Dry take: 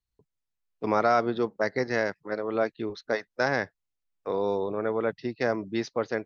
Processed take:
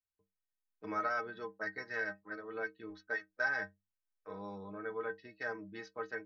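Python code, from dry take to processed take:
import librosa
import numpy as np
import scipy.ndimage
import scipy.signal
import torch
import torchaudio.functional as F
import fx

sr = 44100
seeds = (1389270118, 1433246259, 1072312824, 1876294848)

y = fx.peak_eq(x, sr, hz=1600.0, db=13.0, octaves=0.84)
y = fx.stiff_resonator(y, sr, f0_hz=93.0, decay_s=0.3, stiffness=0.03)
y = y * 10.0 ** (-7.0 / 20.0)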